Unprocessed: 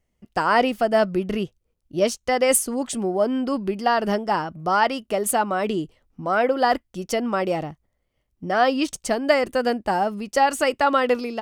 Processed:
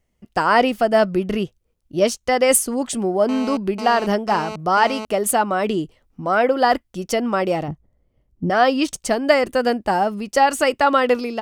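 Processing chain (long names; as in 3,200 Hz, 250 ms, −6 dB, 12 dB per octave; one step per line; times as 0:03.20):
0:03.29–0:05.05: phone interference −33 dBFS
0:07.68–0:08.50: tilt shelving filter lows +8.5 dB, about 820 Hz
level +3 dB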